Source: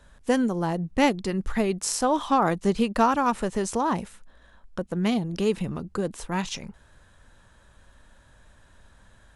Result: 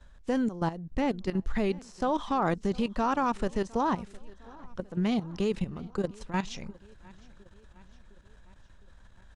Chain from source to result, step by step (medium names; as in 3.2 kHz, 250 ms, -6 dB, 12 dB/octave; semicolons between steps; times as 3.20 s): de-esser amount 80%; Chebyshev low-pass 6.1 kHz, order 2; bass shelf 69 Hz +9.5 dB; level held to a coarse grid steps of 13 dB; feedback delay 709 ms, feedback 58%, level -23.5 dB